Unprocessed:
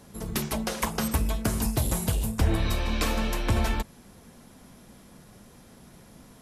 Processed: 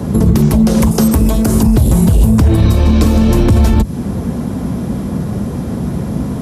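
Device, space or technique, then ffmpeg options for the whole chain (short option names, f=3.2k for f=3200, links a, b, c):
mastering chain: -filter_complex "[0:a]asettb=1/sr,asplit=3[a][b][c];[a]atrim=end=0.914[d];[b]atrim=start=0.91:end=1.63,asetpts=PTS-STARTPTS,afade=t=in:d=0.004:c=qsin,afade=t=out:st=0.716:d=0.004:c=qsin,bass=f=250:g=-14,treble=f=4k:g=8[e];[c]atrim=start=1.626[f];[d][e]acrossfade=d=0.004:c1=hsin:c2=qsin[g];[g][f]acrossfade=d=0.004:c1=qsin:c2=hsin,highpass=f=55:w=0.5412,highpass=f=55:w=1.3066,equalizer=f=1.1k:t=o:w=0.77:g=2.5,acrossover=split=340|1800|3900[h][i][j][k];[h]acompressor=threshold=-36dB:ratio=4[l];[i]acompressor=threshold=-44dB:ratio=4[m];[j]acompressor=threshold=-51dB:ratio=4[n];[k]acompressor=threshold=-36dB:ratio=4[o];[l][m][n][o]amix=inputs=4:normalize=0,acompressor=threshold=-39dB:ratio=1.5,tiltshelf=f=680:g=10,alimiter=level_in=27dB:limit=-1dB:release=50:level=0:latency=1,volume=-1dB"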